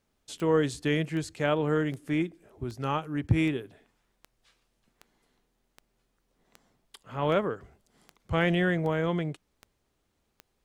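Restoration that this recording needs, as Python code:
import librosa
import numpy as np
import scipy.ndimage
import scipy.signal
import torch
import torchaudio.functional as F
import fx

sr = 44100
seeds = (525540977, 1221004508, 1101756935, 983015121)

y = fx.fix_declip(x, sr, threshold_db=-13.0)
y = fx.fix_declick_ar(y, sr, threshold=10.0)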